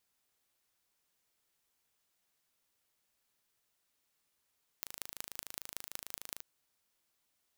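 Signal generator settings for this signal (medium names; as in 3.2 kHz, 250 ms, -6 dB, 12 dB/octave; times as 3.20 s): pulse train 26.7 per s, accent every 5, -11 dBFS 1.60 s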